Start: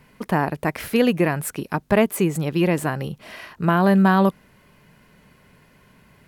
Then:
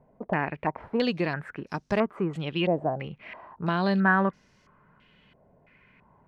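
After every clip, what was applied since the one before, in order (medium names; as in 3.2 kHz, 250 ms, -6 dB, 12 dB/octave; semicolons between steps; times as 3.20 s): step-sequenced low-pass 3 Hz 680–5800 Hz; trim -8.5 dB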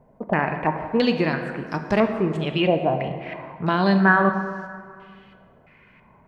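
plate-style reverb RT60 2.1 s, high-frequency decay 0.55×, DRR 6 dB; trim +5 dB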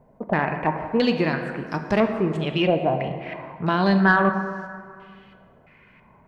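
saturation -6 dBFS, distortion -26 dB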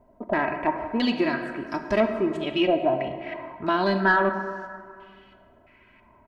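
comb 3.1 ms, depth 74%; trim -3.5 dB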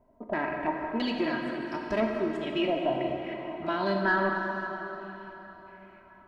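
plate-style reverb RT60 4.3 s, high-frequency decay 0.75×, DRR 3 dB; trim -6.5 dB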